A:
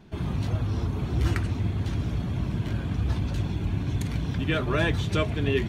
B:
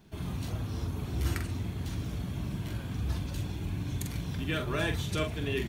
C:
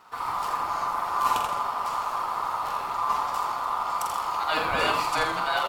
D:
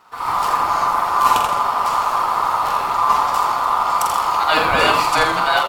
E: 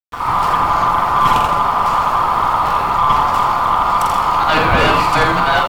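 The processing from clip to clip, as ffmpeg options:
-filter_complex "[0:a]aemphasis=mode=production:type=50fm,asplit=2[s0][s1];[s1]adelay=45,volume=0.473[s2];[s0][s2]amix=inputs=2:normalize=0,volume=0.447"
-filter_complex "[0:a]equalizer=f=1800:t=o:w=0.21:g=3.5,aeval=exprs='val(0)*sin(2*PI*1100*n/s)':c=same,asplit=2[s0][s1];[s1]asplit=5[s2][s3][s4][s5][s6];[s2]adelay=83,afreqshift=-150,volume=0.501[s7];[s3]adelay=166,afreqshift=-300,volume=0.207[s8];[s4]adelay=249,afreqshift=-450,volume=0.0841[s9];[s5]adelay=332,afreqshift=-600,volume=0.0347[s10];[s6]adelay=415,afreqshift=-750,volume=0.0141[s11];[s7][s8][s9][s10][s11]amix=inputs=5:normalize=0[s12];[s0][s12]amix=inputs=2:normalize=0,volume=2.37"
-af "dynaudnorm=f=160:g=3:m=2.66,volume=1.26"
-af "aeval=exprs='0.891*(cos(1*acos(clip(val(0)/0.891,-1,1)))-cos(1*PI/2))+0.178*(cos(2*acos(clip(val(0)/0.891,-1,1)))-cos(2*PI/2))+0.178*(cos(5*acos(clip(val(0)/0.891,-1,1)))-cos(5*PI/2))':c=same,aeval=exprs='val(0)*gte(abs(val(0)),0.0447)':c=same,bass=f=250:g=9,treble=f=4000:g=-8,volume=0.841"

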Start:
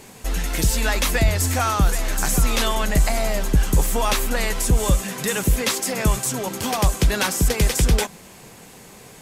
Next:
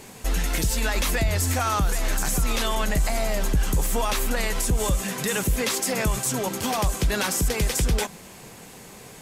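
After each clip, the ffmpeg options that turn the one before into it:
-af "alimiter=limit=0.188:level=0:latency=1:release=58"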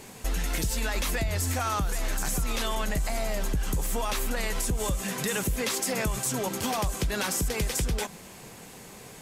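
-af "acompressor=threshold=0.0794:ratio=6,volume=0.794"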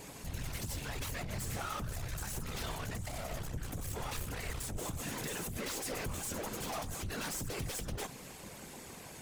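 -af "aeval=exprs='(tanh(56.2*val(0)+0.3)-tanh(0.3))/56.2':c=same,afftfilt=real='hypot(re,im)*cos(2*PI*random(0))':imag='hypot(re,im)*sin(2*PI*random(1))':win_size=512:overlap=0.75,volume=1.58"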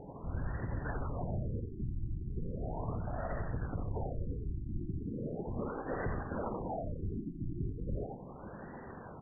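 -af "aecho=1:1:86:0.531,afftfilt=real='re*lt(b*sr/1024,360*pow(2000/360,0.5+0.5*sin(2*PI*0.37*pts/sr)))':imag='im*lt(b*sr/1024,360*pow(2000/360,0.5+0.5*sin(2*PI*0.37*pts/sr)))':win_size=1024:overlap=0.75,volume=1.41"

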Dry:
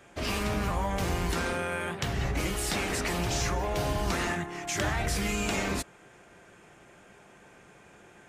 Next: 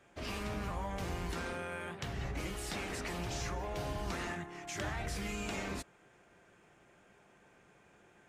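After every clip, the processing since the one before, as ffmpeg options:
-af "highshelf=f=7600:g=-5,volume=0.355"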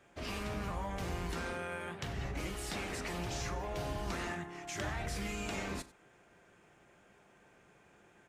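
-af "aecho=1:1:40|94:0.133|0.106"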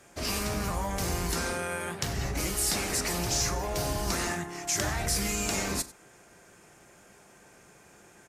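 -af "aexciter=amount=3.1:drive=6.1:freq=4500,aresample=32000,aresample=44100,volume=2.24"

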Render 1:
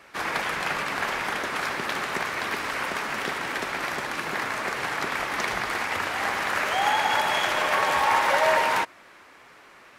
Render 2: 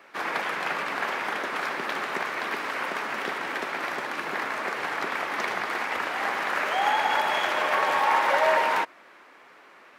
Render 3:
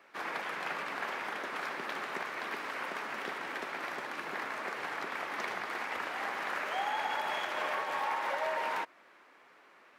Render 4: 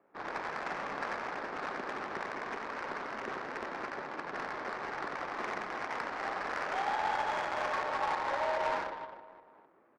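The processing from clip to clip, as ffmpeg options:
-af "highpass=230,equalizer=f=9100:w=0.43:g=-8"
-af "alimiter=limit=0.168:level=0:latency=1:release=211,volume=0.398"
-af "aecho=1:1:90|207|359.1|556.8|813.9:0.631|0.398|0.251|0.158|0.1,adynamicsmooth=sensitivity=3:basefreq=670"

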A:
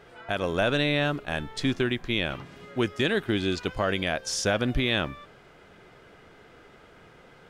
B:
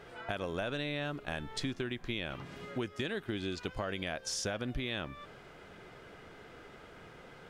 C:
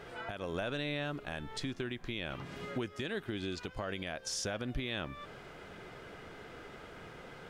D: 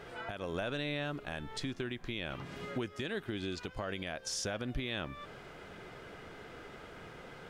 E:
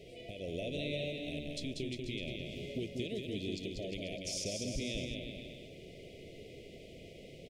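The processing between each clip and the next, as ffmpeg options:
-af "acompressor=threshold=0.0178:ratio=4"
-af "alimiter=level_in=1.88:limit=0.0631:level=0:latency=1:release=367,volume=0.531,volume=1.41"
-af anull
-af "asuperstop=centerf=1200:order=12:qfactor=0.78,aecho=1:1:190|351.5|488.8|605.5|704.6:0.631|0.398|0.251|0.158|0.1,volume=0.794"

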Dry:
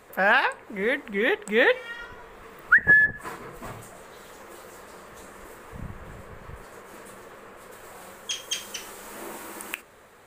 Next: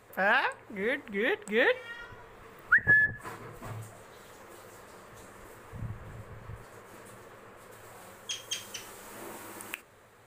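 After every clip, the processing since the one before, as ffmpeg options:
-af "equalizer=f=110:w=3.6:g=11,volume=0.531"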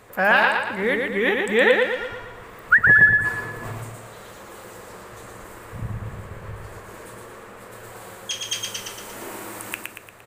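-af "aecho=1:1:116|232|348|464|580|696:0.668|0.327|0.16|0.0786|0.0385|0.0189,volume=2.37"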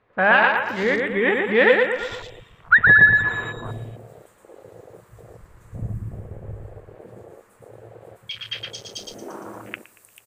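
-filter_complex "[0:a]afwtdn=0.0251,acrossover=split=4000[s0][s1];[s1]adelay=440[s2];[s0][s2]amix=inputs=2:normalize=0,volume=1.19"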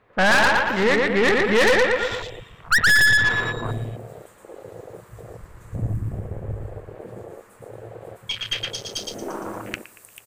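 -af "aeval=exprs='(tanh(11.2*val(0)+0.5)-tanh(0.5))/11.2':c=same,volume=2.24"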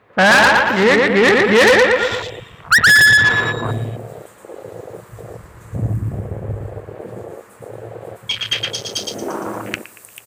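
-af "highpass=73,volume=2.11"

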